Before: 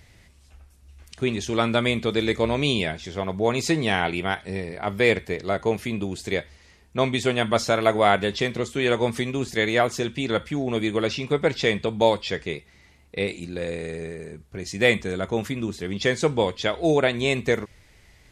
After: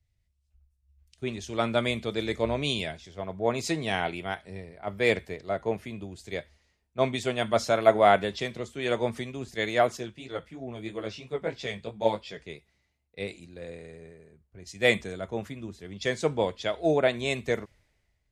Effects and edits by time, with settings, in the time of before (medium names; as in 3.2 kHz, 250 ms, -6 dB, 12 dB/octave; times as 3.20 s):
9.97–12.37 s: chorus 3 Hz, delay 15 ms, depth 4.4 ms
whole clip: peaking EQ 640 Hz +5 dB 0.36 oct; three bands expanded up and down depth 70%; trim -7 dB